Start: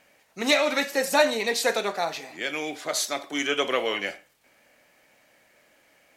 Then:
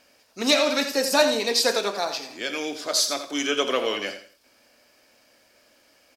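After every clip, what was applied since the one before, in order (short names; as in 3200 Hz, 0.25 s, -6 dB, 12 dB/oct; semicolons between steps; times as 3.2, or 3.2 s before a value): thirty-one-band EQ 160 Hz -11 dB, 250 Hz +3 dB, 800 Hz -4 dB, 2000 Hz -8 dB, 5000 Hz +11 dB; on a send: feedback echo 85 ms, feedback 28%, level -10.5 dB; on the sum: gain +1.5 dB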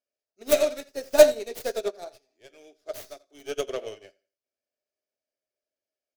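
tracing distortion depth 0.27 ms; thirty-one-band EQ 100 Hz +9 dB, 160 Hz -5 dB, 400 Hz +12 dB, 630 Hz +11 dB, 1000 Hz -7 dB, 6300 Hz +5 dB; upward expander 2.5:1, over -32 dBFS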